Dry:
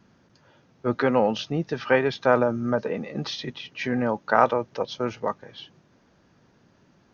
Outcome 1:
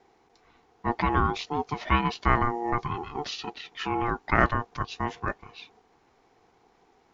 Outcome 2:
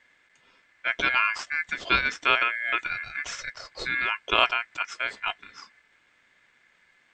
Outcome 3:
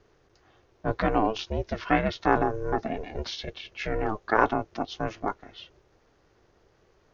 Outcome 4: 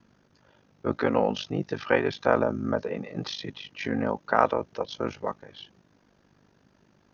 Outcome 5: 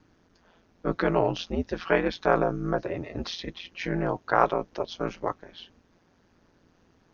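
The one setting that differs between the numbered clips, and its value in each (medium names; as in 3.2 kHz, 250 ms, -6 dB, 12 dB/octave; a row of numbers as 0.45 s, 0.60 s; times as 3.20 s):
ring modulator, frequency: 590 Hz, 1.9 kHz, 220 Hz, 25 Hz, 87 Hz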